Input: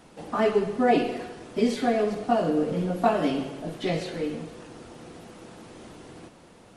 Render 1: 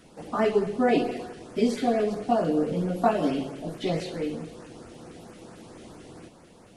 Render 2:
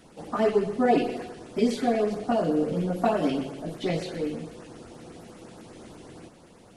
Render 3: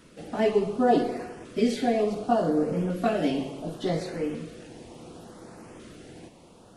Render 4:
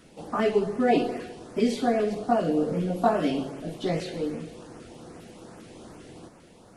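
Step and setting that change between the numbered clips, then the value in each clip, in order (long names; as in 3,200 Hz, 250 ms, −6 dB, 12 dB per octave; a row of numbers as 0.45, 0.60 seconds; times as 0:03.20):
auto-filter notch, speed: 4.5, 8.2, 0.69, 2.5 Hertz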